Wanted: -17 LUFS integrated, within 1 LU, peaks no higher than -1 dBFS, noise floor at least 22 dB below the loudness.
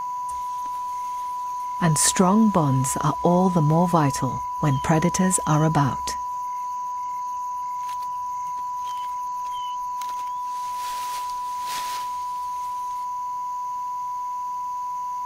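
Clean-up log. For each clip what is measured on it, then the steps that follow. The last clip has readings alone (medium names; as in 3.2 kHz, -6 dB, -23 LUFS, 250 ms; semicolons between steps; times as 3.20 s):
tick rate 20 per s; steady tone 990 Hz; tone level -26 dBFS; loudness -24.5 LUFS; peak level -5.5 dBFS; loudness target -17.0 LUFS
-> de-click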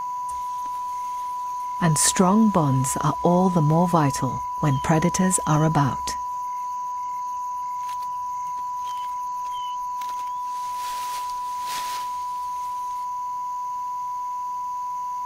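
tick rate 0.13 per s; steady tone 990 Hz; tone level -26 dBFS
-> band-stop 990 Hz, Q 30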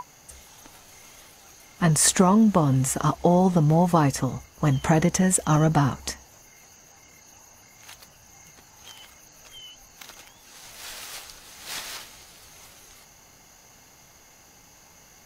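steady tone not found; loudness -21.5 LUFS; peak level -6.5 dBFS; loudness target -17.0 LUFS
-> trim +4.5 dB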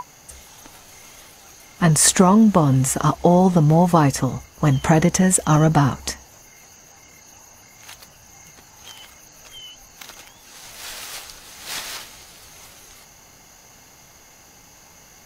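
loudness -17.0 LUFS; peak level -2.0 dBFS; noise floor -49 dBFS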